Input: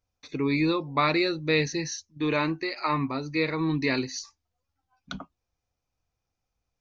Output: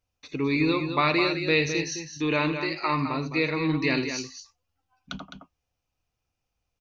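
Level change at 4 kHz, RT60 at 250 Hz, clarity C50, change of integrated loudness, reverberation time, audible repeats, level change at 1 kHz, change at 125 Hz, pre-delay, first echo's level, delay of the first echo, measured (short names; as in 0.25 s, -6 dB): +1.5 dB, none, none, +1.5 dB, none, 2, +1.0 dB, +1.0 dB, none, -13.0 dB, 81 ms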